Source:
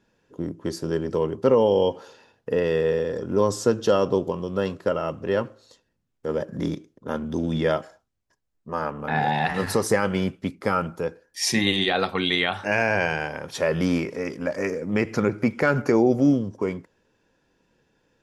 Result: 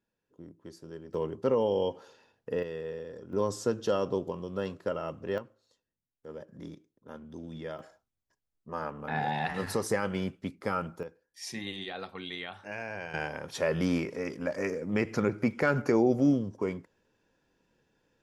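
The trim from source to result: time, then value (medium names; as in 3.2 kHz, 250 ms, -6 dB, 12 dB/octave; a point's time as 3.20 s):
-18.5 dB
from 1.14 s -8.5 dB
from 2.63 s -15.5 dB
from 3.33 s -8.5 dB
from 5.38 s -17 dB
from 7.79 s -8 dB
from 11.03 s -16.5 dB
from 13.14 s -5.5 dB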